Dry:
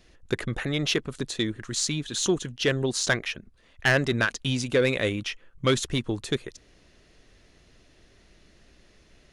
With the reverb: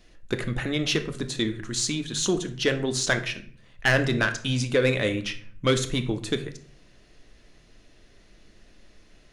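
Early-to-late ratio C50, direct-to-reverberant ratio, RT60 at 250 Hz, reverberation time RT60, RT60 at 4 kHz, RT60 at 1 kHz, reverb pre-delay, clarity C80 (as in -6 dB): 13.0 dB, 7.0 dB, 0.70 s, 0.50 s, 0.35 s, 0.45 s, 3 ms, 16.5 dB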